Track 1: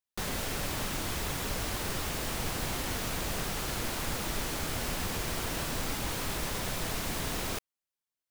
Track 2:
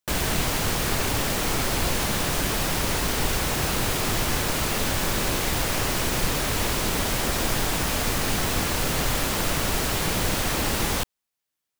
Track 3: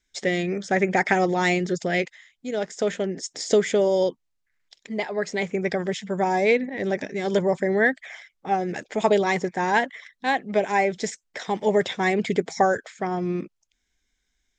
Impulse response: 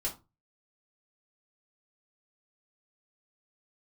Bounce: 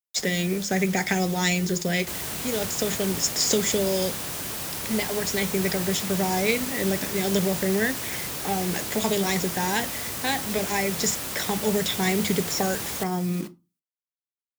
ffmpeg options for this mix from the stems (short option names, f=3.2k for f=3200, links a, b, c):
-filter_complex "[0:a]volume=-10.5dB[a];[1:a]highpass=71,adelay=2000,volume=-10dB[b];[2:a]acrossover=split=220|3000[c][d][e];[d]acompressor=threshold=-35dB:ratio=3[f];[c][f][e]amix=inputs=3:normalize=0,acrusher=bits=7:mix=0:aa=0.000001,volume=2.5dB,asplit=3[g][h][i];[h]volume=-10dB[j];[i]apad=whole_len=366228[k];[a][k]sidechaingate=range=-33dB:threshold=-33dB:ratio=16:detection=peak[l];[3:a]atrim=start_sample=2205[m];[j][m]afir=irnorm=-1:irlink=0[n];[l][b][g][n]amix=inputs=4:normalize=0,highpass=48,highshelf=f=5.9k:g=9"